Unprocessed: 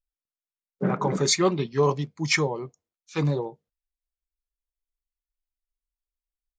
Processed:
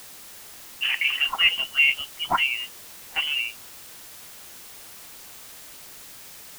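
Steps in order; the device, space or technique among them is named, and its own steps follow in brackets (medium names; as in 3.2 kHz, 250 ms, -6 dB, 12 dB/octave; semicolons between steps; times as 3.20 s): scrambled radio voice (band-pass 310–2800 Hz; frequency inversion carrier 3.2 kHz; white noise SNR 15 dB); trim +3.5 dB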